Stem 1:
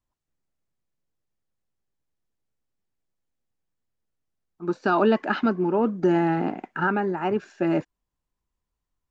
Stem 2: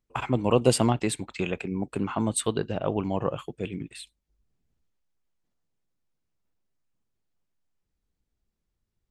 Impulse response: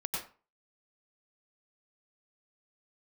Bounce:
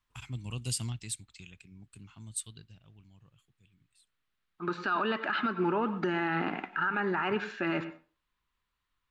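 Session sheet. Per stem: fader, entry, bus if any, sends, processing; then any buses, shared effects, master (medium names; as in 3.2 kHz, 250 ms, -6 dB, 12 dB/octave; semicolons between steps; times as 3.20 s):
-4.0 dB, 0.00 s, send -16 dB, high-order bell 2.1 kHz +13 dB 2.3 oct; compression, threshold -19 dBFS, peak gain reduction 11 dB
0.87 s -6.5 dB -> 1.52 s -13.5 dB -> 2.59 s -13.5 dB -> 2.84 s -20.5 dB, 0.00 s, no send, FFT filter 110 Hz 0 dB, 550 Hz -26 dB, 5.2 kHz +6 dB; auto duck -11 dB, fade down 1.70 s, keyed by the first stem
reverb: on, RT60 0.35 s, pre-delay 88 ms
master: peak limiter -21 dBFS, peak gain reduction 10 dB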